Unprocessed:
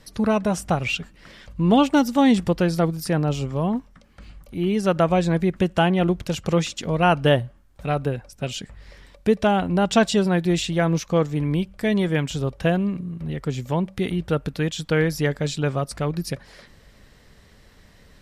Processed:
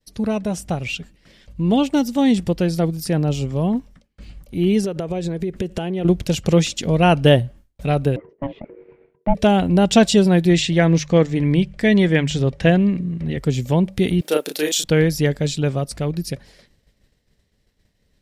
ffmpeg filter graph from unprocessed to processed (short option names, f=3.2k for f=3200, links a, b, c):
-filter_complex "[0:a]asettb=1/sr,asplit=3[a][b][c];[a]atrim=end=4.844[d];[b]atrim=start=4.84:end=6.05,asetpts=PTS-STARTPTS,afade=t=in:d=0.004:c=qsin,afade=t=out:st=1.206:d=0.004:c=qsin,equalizer=f=420:w=3.2:g=9.5,acompressor=threshold=-25dB:ratio=10:attack=3.2:release=140:knee=1:detection=peak[e];[c]atrim=start=6.046[f];[d][e]acrossfade=d=0.004:c1=hsin:c2=qsin[g];[g][f]acrossfade=d=0.004:c1=qsin:c2=hsin,asettb=1/sr,asplit=3[h][i][j];[h]atrim=end=8.164[k];[i]atrim=start=8.16:end=9.35,asetpts=PTS-STARTPTS,afade=t=in:d=0.004:c=qsin,afade=t=out:st=1.186:d=0.004:c=qsin,lowpass=f=1.7k:w=0.5412,lowpass=f=1.7k:w=1.3066,aeval=exprs='val(0)*sin(2*PI*420*n/s)':c=same[l];[j]atrim=start=9.346[m];[k][l]acrossfade=d=0.004:c1=hsin:c2=qsin[n];[n][m]acrossfade=d=0.004:c1=qsin:c2=hsin,asettb=1/sr,asplit=3[o][p][q];[o]atrim=end=10.494[r];[p]atrim=start=10.49:end=13.37,asetpts=PTS-STARTPTS,afade=t=in:d=0.004:c=qsin,afade=t=out:st=2.876:d=0.004:c=qsin,lowpass=7.2k,equalizer=f=1.9k:w=3:g=7,bandreject=f=50:t=h:w=6,bandreject=f=100:t=h:w=6,bandreject=f=150:t=h:w=6[s];[q]atrim=start=13.366[t];[r][s]acrossfade=d=0.004:c1=hsin:c2=qsin[u];[u][t]acrossfade=d=0.004:c1=qsin:c2=hsin,asettb=1/sr,asplit=3[v][w][x];[v]atrim=end=14.214[y];[w]atrim=start=14.21:end=14.84,asetpts=PTS-STARTPTS,afade=t=in:d=0.004:c=qsin,afade=t=out:st=0.626:d=0.004:c=qsin,highpass=f=320:w=0.5412,highpass=f=320:w=1.3066,aemphasis=mode=production:type=50fm,asplit=2[z][aa];[aa]adelay=33,volume=-3dB[ab];[z][ab]amix=inputs=2:normalize=0,atrim=end_sample=27783[ac];[x]atrim=start=14.836[ad];[y][ac]acrossfade=d=0.004:c1=hsin:c2=qsin[ae];[ae][ad]acrossfade=d=0.004:c1=qsin:c2=hsin,agate=range=-33dB:threshold=-41dB:ratio=3:detection=peak,equalizer=f=1.2k:w=1.1:g=-9,dynaudnorm=f=330:g=21:m=11.5dB"